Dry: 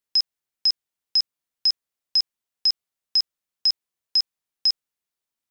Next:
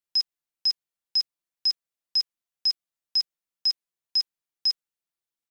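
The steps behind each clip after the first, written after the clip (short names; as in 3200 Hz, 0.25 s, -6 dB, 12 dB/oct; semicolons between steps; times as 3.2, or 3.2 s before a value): comb 5.9 ms, depth 45%; gain -6 dB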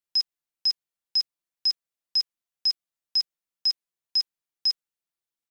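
nothing audible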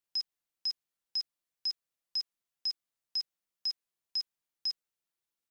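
limiter -27 dBFS, peak gain reduction 10 dB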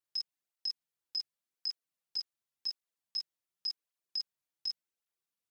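tape flanging out of phase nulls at 0.89 Hz, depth 5.1 ms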